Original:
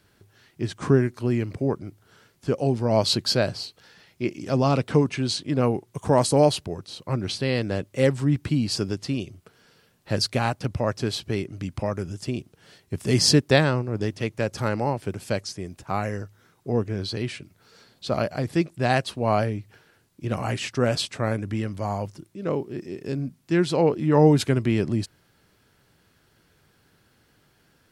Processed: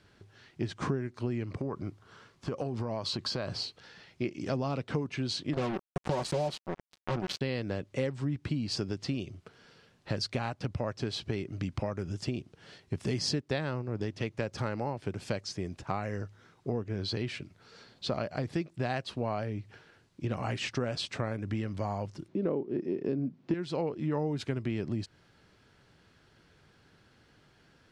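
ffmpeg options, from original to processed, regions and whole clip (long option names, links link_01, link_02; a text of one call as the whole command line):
ffmpeg -i in.wav -filter_complex "[0:a]asettb=1/sr,asplit=3[link_01][link_02][link_03];[link_01]atrim=end=1.474[link_04];[link_02]atrim=start=1.47:end=3.52,asetpts=PTS-STARTPTS,afade=type=in:duration=0.004:curve=qsin,afade=type=out:start_time=2.046:duration=0.004:curve=qsin,equalizer=frequency=1100:width=4.6:gain=9,acompressor=threshold=-27dB:ratio=6:attack=3.2:release=140:knee=1:detection=peak[link_05];[link_03]atrim=start=3.516[link_06];[link_04][link_05]acrossfade=duration=0.004:curve1=hsin:curve2=qsin[link_07];[link_07][link_06]acrossfade=duration=0.004:curve1=qsin:curve2=hsin,asettb=1/sr,asplit=3[link_08][link_09][link_10];[link_08]atrim=end=5.534[link_11];[link_09]atrim=start=5.53:end=7.41,asetpts=PTS-STARTPTS,afade=type=in:duration=0.004:curve=qsin,afade=type=out:start_time=1.876:duration=0.004:curve=qsin,aecho=1:1:5.4:0.81,atrim=end_sample=82908,acrusher=bits=3:mix=0:aa=0.5[link_12];[link_10]atrim=start=7.406[link_13];[link_11][link_12]acrossfade=duration=0.004:curve1=hsin:curve2=qsin[link_14];[link_14][link_13]acrossfade=duration=0.004:curve1=qsin:curve2=hsin,asettb=1/sr,asplit=3[link_15][link_16][link_17];[link_15]atrim=end=22.284[link_18];[link_16]atrim=start=22.28:end=23.54,asetpts=PTS-STARTPTS,afade=type=in:duration=0.004:curve=qsin,afade=type=out:start_time=1.256:duration=0.004:curve=qsin,highpass=120,lowpass=4300,equalizer=frequency=330:width=0.42:gain=12[link_19];[link_17]atrim=start=23.536[link_20];[link_18][link_19]acrossfade=duration=0.004:curve1=hsin:curve2=qsin[link_21];[link_21][link_20]acrossfade=duration=0.004:curve1=qsin:curve2=hsin,lowpass=5800,acompressor=threshold=-29dB:ratio=6" out.wav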